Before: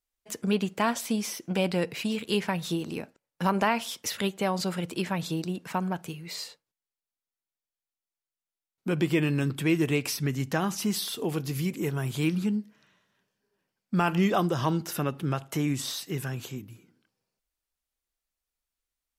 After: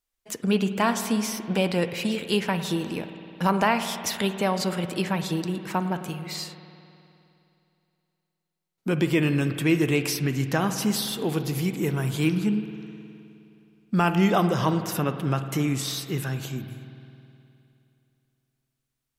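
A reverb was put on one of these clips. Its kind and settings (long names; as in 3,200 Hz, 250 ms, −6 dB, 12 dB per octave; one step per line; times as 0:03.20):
spring reverb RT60 2.8 s, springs 52 ms, chirp 55 ms, DRR 9 dB
level +3 dB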